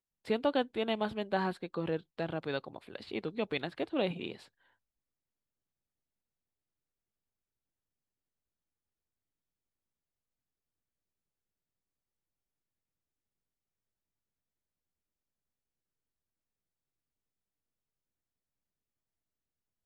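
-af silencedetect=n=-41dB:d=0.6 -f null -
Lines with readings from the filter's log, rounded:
silence_start: 4.36
silence_end: 19.85 | silence_duration: 15.50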